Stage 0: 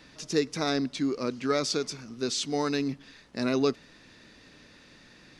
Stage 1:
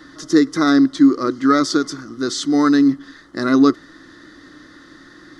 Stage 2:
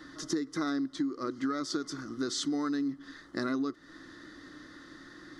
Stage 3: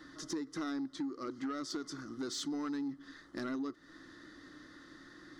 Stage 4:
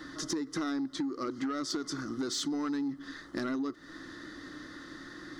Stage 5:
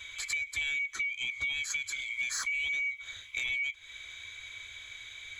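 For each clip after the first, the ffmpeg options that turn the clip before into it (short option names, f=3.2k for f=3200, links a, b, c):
-af "superequalizer=6b=3.98:10b=3.16:11b=2:12b=0.251,volume=5.5dB"
-af "acompressor=threshold=-22dB:ratio=16,volume=-6.5dB"
-af "asoftclip=type=tanh:threshold=-26dB,volume=-4.5dB"
-af "acompressor=threshold=-40dB:ratio=3,volume=8.5dB"
-af "afftfilt=real='real(if(lt(b,920),b+92*(1-2*mod(floor(b/92),2)),b),0)':imag='imag(if(lt(b,920),b+92*(1-2*mod(floor(b/92),2)),b),0)':win_size=2048:overlap=0.75"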